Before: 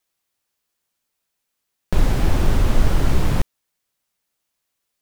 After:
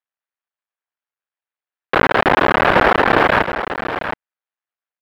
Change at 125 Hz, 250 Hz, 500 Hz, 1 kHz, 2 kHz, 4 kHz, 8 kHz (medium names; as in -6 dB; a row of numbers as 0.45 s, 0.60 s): -6.5 dB, +4.5 dB, +13.5 dB, +17.5 dB, +19.0 dB, +9.5 dB, no reading